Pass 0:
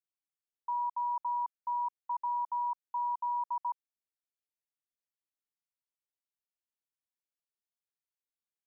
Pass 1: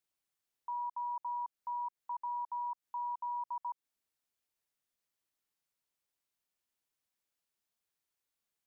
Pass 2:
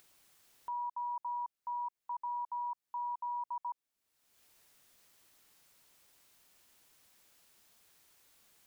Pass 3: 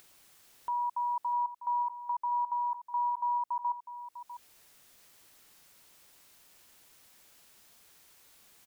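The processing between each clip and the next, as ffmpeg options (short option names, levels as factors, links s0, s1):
-af "alimiter=level_in=6.68:limit=0.0631:level=0:latency=1:release=155,volume=0.15,volume=2.11"
-af "acompressor=mode=upward:threshold=0.00398:ratio=2.5"
-af "aecho=1:1:649:0.251,volume=2"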